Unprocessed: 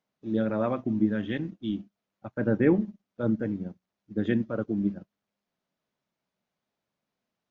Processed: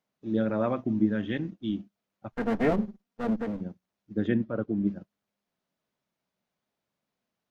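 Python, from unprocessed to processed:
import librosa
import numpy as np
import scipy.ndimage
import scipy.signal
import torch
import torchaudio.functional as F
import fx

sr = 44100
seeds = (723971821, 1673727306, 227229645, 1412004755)

y = fx.lower_of_two(x, sr, delay_ms=4.3, at=(2.32, 3.6), fade=0.02)
y = fx.air_absorb(y, sr, metres=170.0, at=(4.27, 4.87))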